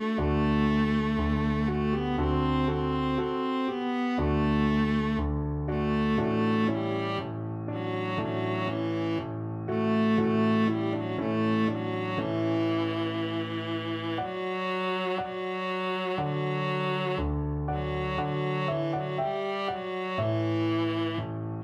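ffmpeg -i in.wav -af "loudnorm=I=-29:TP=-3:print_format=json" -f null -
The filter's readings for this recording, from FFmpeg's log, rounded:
"input_i" : "-28.7",
"input_tp" : "-15.3",
"input_lra" : "3.1",
"input_thresh" : "-38.7",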